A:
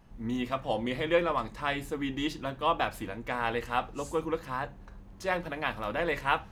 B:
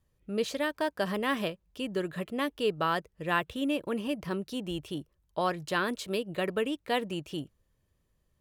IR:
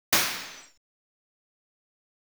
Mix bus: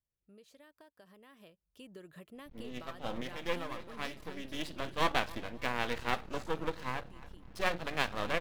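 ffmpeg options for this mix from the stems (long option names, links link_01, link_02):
-filter_complex "[0:a]highshelf=frequency=6100:width_type=q:width=1.5:gain=-12,aeval=exprs='max(val(0),0)':channel_layout=same,adelay=2350,volume=1dB,asplit=2[link_01][link_02];[link_02]volume=-22dB[link_03];[1:a]acompressor=threshold=-33dB:ratio=10,volume=-13.5dB,afade=type=in:start_time=1.32:duration=0.6:silence=0.375837,afade=type=out:start_time=4.36:duration=0.31:silence=0.354813,asplit=2[link_04][link_05];[link_05]apad=whole_len=390918[link_06];[link_01][link_06]sidechaincompress=threshold=-57dB:ratio=12:attack=46:release=413[link_07];[link_03]aecho=0:1:276|552|828|1104:1|0.29|0.0841|0.0244[link_08];[link_07][link_04][link_08]amix=inputs=3:normalize=0,highshelf=frequency=9000:gain=8"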